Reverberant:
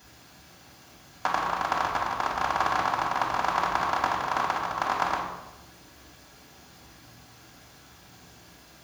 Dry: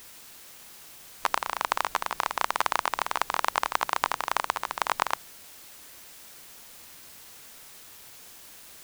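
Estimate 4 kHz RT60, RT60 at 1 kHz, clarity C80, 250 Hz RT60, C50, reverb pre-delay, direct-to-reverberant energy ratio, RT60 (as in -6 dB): 0.80 s, 0.95 s, 5.5 dB, 1.4 s, 3.0 dB, 3 ms, -4.0 dB, 1.0 s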